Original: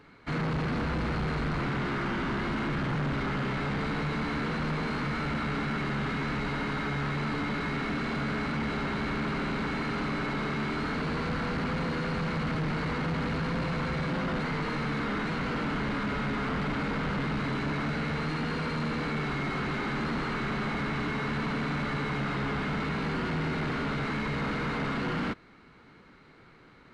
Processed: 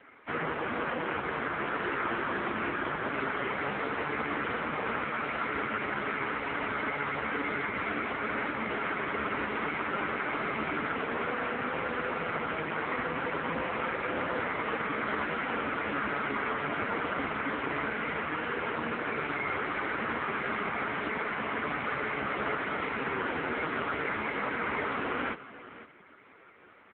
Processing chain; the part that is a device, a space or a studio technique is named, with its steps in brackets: 6.19–6.91 s: high-pass 54 Hz 12 dB/octave; satellite phone (band-pass 370–3300 Hz; delay 517 ms -16 dB; trim +6.5 dB; AMR-NB 5.15 kbps 8 kHz)

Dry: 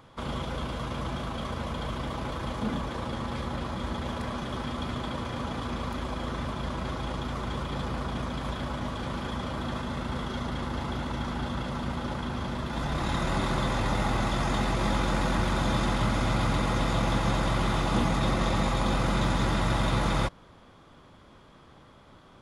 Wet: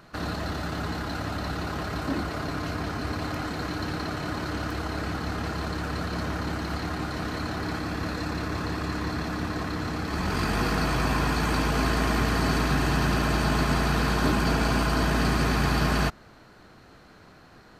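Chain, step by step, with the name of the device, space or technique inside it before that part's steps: nightcore (tape speed +26%); trim +2 dB

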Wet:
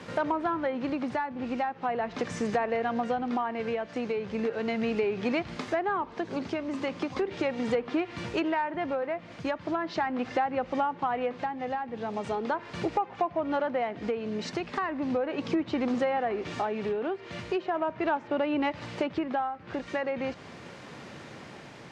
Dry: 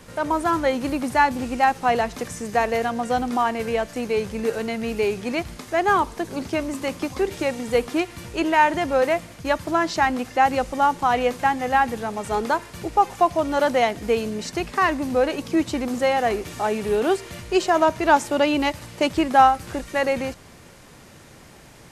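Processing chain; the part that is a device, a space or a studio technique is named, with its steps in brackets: low-pass that closes with the level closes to 2.3 kHz, closed at -16.5 dBFS; AM radio (band-pass 130–4100 Hz; compression 8:1, threshold -28 dBFS, peak gain reduction 18.5 dB; saturation -17.5 dBFS, distortion -28 dB; tremolo 0.38 Hz, depth 35%); 11.30–12.49 s: dynamic bell 1.5 kHz, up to -4 dB, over -51 dBFS, Q 1.2; trim +4 dB

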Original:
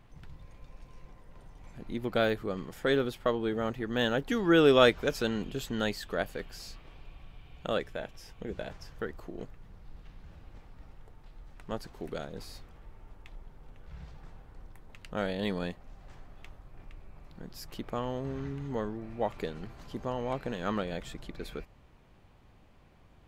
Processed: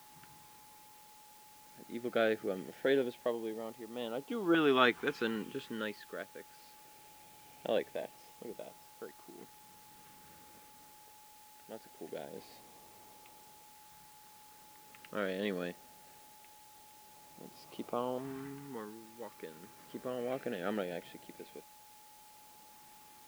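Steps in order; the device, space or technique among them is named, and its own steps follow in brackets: shortwave radio (band-pass 260–2800 Hz; tremolo 0.39 Hz, depth 67%; LFO notch saw up 0.22 Hz 510–1900 Hz; whistle 850 Hz -59 dBFS; white noise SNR 20 dB)

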